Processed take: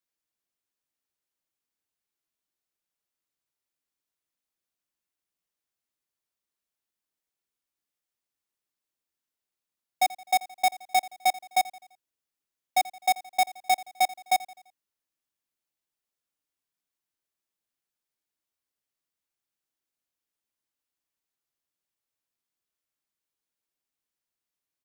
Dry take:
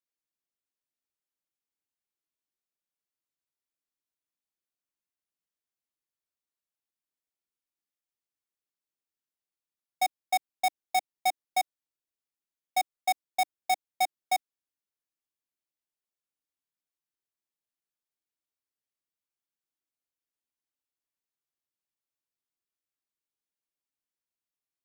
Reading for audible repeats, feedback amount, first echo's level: 3, 49%, -19.0 dB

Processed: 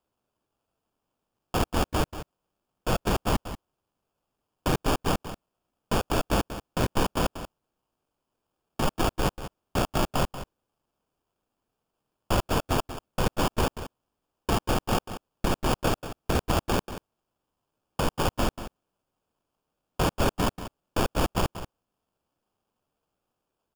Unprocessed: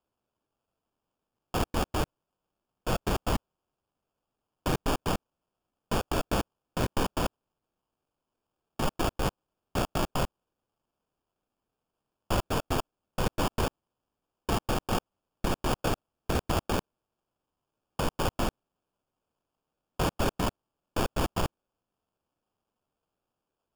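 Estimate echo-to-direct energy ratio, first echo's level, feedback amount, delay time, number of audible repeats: -12.0 dB, -12.0 dB, no regular repeats, 186 ms, 1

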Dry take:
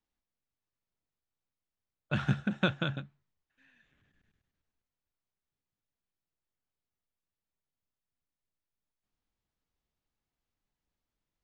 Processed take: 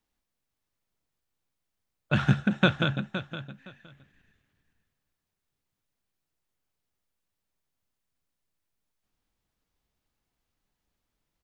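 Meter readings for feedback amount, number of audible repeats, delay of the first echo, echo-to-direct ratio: 18%, 2, 515 ms, -11.5 dB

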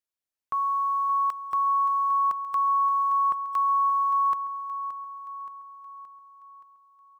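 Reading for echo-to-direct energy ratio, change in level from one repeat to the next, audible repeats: -10.5 dB, -5.5 dB, 5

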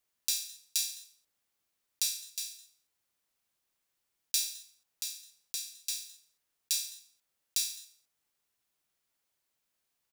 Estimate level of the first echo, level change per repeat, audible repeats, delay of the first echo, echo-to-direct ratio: -22.0 dB, no regular repeats, 1, 211 ms, -22.0 dB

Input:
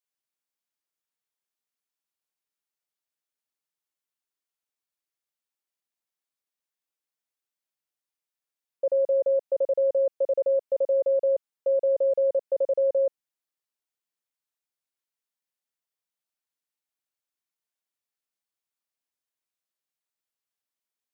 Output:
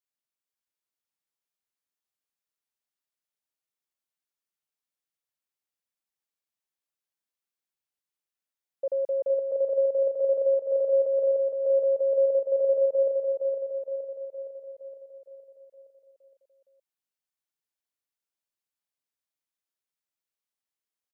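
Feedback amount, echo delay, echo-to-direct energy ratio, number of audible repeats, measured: 57%, 465 ms, -2.5 dB, 7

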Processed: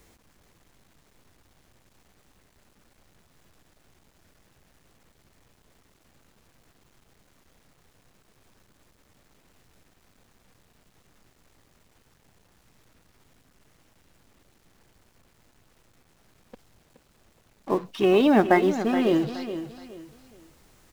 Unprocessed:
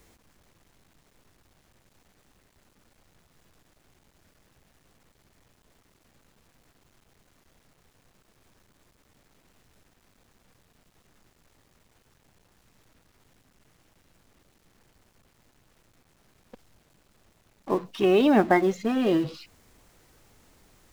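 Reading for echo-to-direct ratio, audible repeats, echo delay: -10.5 dB, 3, 422 ms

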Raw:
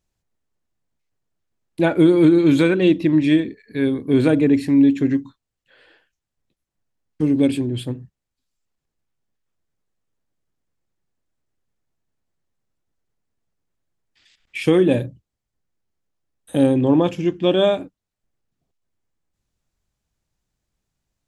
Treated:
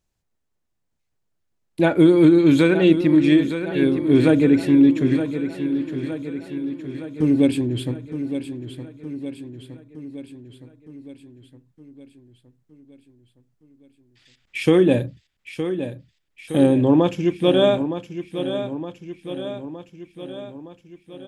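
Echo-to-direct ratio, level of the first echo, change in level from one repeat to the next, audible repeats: -8.0 dB, -10.0 dB, -4.5 dB, 6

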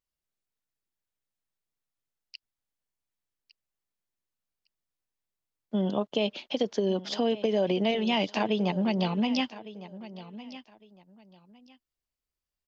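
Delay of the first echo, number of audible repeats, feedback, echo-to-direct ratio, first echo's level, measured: 1157 ms, 2, 22%, -16.0 dB, -16.0 dB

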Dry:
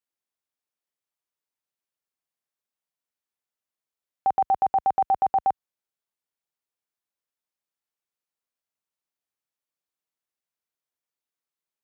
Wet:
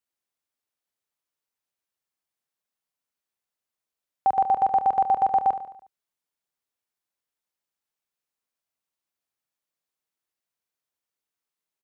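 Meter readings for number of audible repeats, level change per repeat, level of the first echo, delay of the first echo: 5, -6.0 dB, -11.0 dB, 72 ms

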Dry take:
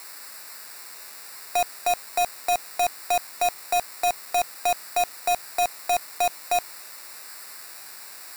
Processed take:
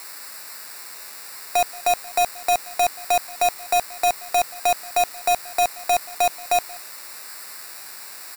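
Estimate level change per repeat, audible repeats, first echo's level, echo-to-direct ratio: no regular repeats, 1, -22.0 dB, -22.0 dB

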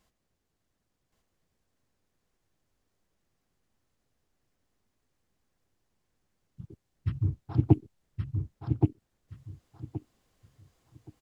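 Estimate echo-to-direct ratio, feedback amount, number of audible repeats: -3.5 dB, 22%, 3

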